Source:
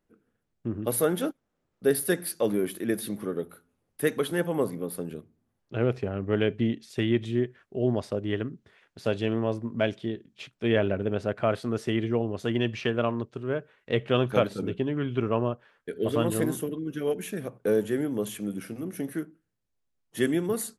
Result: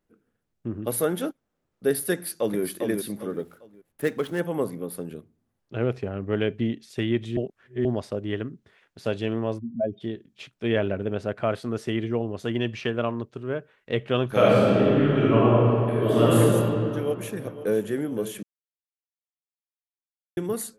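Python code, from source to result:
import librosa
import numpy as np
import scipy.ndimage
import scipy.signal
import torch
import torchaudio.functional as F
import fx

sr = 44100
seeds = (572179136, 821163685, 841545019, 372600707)

y = fx.echo_throw(x, sr, start_s=2.13, length_s=0.48, ms=400, feedback_pct=30, wet_db=-4.5)
y = fx.median_filter(y, sr, points=9, at=(3.28, 4.39), fade=0.02)
y = fx.spec_expand(y, sr, power=2.7, at=(9.58, 10.0), fade=0.02)
y = fx.reverb_throw(y, sr, start_s=14.27, length_s=2.13, rt60_s=2.7, drr_db=-8.0)
y = fx.echo_throw(y, sr, start_s=16.94, length_s=0.96, ms=510, feedback_pct=55, wet_db=-13.5)
y = fx.edit(y, sr, fx.reverse_span(start_s=7.37, length_s=0.48),
    fx.silence(start_s=18.43, length_s=1.94), tone=tone)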